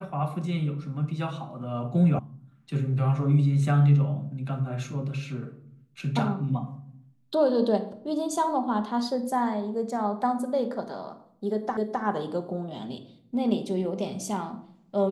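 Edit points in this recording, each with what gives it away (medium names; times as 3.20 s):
2.19 s: sound stops dead
11.77 s: repeat of the last 0.26 s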